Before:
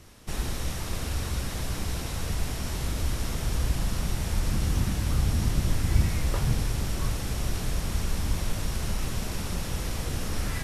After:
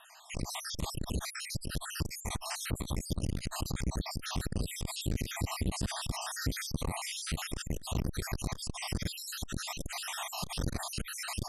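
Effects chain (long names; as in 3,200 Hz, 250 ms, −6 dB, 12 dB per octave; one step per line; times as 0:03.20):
time-frequency cells dropped at random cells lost 66%
change of speed 0.926×
brickwall limiter −23.5 dBFS, peak gain reduction 11.5 dB
saturating transformer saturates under 190 Hz
level +5 dB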